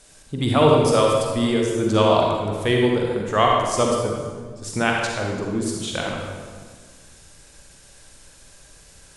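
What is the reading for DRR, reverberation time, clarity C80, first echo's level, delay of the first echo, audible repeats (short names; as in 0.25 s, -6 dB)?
-1.0 dB, 1.6 s, 2.0 dB, none, none, none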